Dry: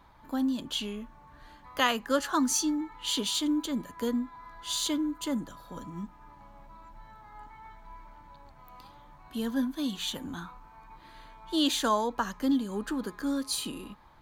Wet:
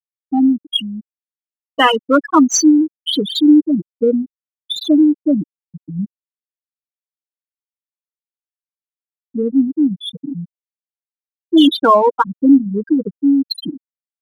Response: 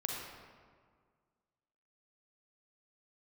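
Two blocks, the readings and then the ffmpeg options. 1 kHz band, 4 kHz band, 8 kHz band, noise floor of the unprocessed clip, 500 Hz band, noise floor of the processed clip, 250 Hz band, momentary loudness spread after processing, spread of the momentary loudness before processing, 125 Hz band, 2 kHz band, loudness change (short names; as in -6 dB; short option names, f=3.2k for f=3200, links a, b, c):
+14.5 dB, +10.0 dB, +9.0 dB, -55 dBFS, +16.0 dB, under -85 dBFS, +17.0 dB, 17 LU, 17 LU, +14.5 dB, +10.5 dB, +15.5 dB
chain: -filter_complex "[0:a]aecho=1:1:6.4:0.44,apsyclip=18.5dB,afftfilt=real='re*gte(hypot(re,im),1)':imag='im*gte(hypot(re,im),1)':win_size=1024:overlap=0.75,asplit=2[a][b];[b]adynamicsmooth=sensitivity=3.5:basefreq=2.5k,volume=-0.5dB[c];[a][c]amix=inputs=2:normalize=0,volume=-8dB"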